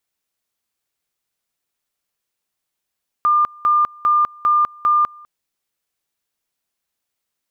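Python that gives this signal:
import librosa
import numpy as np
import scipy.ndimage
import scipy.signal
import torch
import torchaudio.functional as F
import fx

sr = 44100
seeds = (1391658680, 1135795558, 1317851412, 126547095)

y = fx.two_level_tone(sr, hz=1200.0, level_db=-11.5, drop_db=26.5, high_s=0.2, low_s=0.2, rounds=5)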